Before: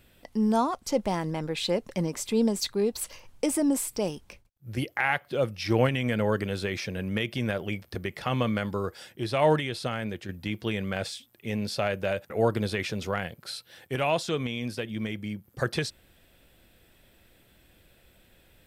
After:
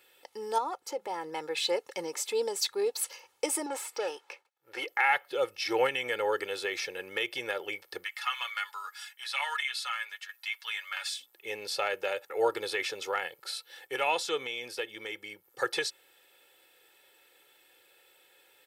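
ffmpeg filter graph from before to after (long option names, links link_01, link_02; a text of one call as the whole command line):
ffmpeg -i in.wav -filter_complex "[0:a]asettb=1/sr,asplit=3[link_01][link_02][link_03];[link_01]atrim=end=0.584[link_04];[link_02]atrim=start=0.58:end=1.33,asetpts=PTS-STARTPTS,afade=type=in:duration=0.004:curve=qsin,afade=type=out:start_time=0.746:duration=0.004:curve=qsin,equalizer=frequency=6300:width=0.32:gain=-7.5,bandreject=frequency=50:width_type=h:width=6,bandreject=frequency=100:width_type=h:width=6,bandreject=frequency=150:width_type=h:width=6,bandreject=frequency=200:width_type=h:width=6,acompressor=threshold=-27dB:ratio=3:attack=3.2:release=140:knee=1:detection=peak[link_05];[link_03]atrim=start=1.326[link_06];[link_04][link_05]acrossfade=duration=0.004:curve1=hsin:curve2=qsin[link_07];[link_07][link_06]acrossfade=duration=0.004:curve1=qsin:curve2=hsin,asettb=1/sr,asplit=3[link_08][link_09][link_10];[link_08]atrim=end=3.664[link_11];[link_09]atrim=start=3.66:end=4.88,asetpts=PTS-STARTPTS,afade=type=in:duration=0.004:curve=qsin,afade=type=out:start_time=1.216:duration=0.004:curve=qsin,asplit=2[link_12][link_13];[link_13]highpass=frequency=720:poles=1,volume=18dB,asoftclip=type=tanh:threshold=-15.5dB[link_14];[link_12][link_14]amix=inputs=2:normalize=0,lowpass=frequency=1100:poles=1,volume=-6dB,lowshelf=frequency=330:gain=-10.5[link_15];[link_10]atrim=start=4.876[link_16];[link_11][link_15]acrossfade=duration=0.004:curve1=hsin:curve2=qsin[link_17];[link_17][link_16]acrossfade=duration=0.004:curve1=qsin:curve2=hsin,asettb=1/sr,asplit=3[link_18][link_19][link_20];[link_18]atrim=end=8.044[link_21];[link_19]atrim=start=8.04:end=11.14,asetpts=PTS-STARTPTS,afade=type=in:duration=0.004:curve=qsin,afade=type=out:start_time=3.096:duration=0.004:curve=qsin,highpass=frequency=1100:width=0.5412,highpass=frequency=1100:width=1.3066,aecho=1:1:7.1:0.63,atrim=end_sample=136710[link_22];[link_20]atrim=start=11.136[link_23];[link_21][link_22]acrossfade=duration=0.004:curve1=hsin:curve2=qsin[link_24];[link_24][link_23]acrossfade=duration=0.004:curve1=qsin:curve2=hsin,highpass=560,aecho=1:1:2.3:0.74,volume=-1dB" out.wav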